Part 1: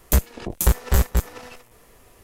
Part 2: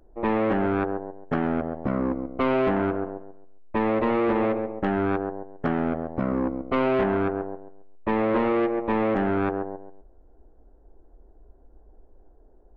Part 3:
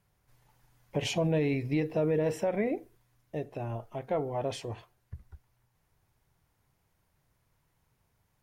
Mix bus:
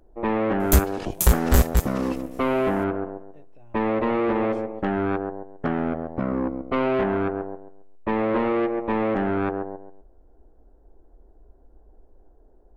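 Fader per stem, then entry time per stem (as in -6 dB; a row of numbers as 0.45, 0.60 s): +0.5, 0.0, -18.0 dB; 0.60, 0.00, 0.00 s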